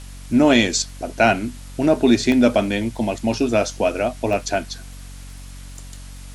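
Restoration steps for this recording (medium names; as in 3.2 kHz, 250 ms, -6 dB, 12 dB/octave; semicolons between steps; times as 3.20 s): de-click; de-hum 46.5 Hz, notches 6; interpolate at 2.32/4.33/5.79 s, 1.2 ms; noise reduction 26 dB, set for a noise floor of -37 dBFS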